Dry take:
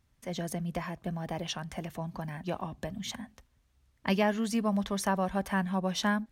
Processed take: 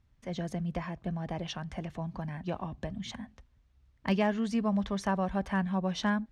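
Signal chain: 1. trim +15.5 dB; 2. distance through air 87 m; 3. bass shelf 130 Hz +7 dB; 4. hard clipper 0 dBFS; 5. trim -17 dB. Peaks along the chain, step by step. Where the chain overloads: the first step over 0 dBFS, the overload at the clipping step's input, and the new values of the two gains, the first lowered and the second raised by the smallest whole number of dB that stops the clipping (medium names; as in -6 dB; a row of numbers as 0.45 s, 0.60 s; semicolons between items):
+3.5 dBFS, +2.5 dBFS, +3.5 dBFS, 0.0 dBFS, -17.0 dBFS; step 1, 3.5 dB; step 1 +11.5 dB, step 5 -13 dB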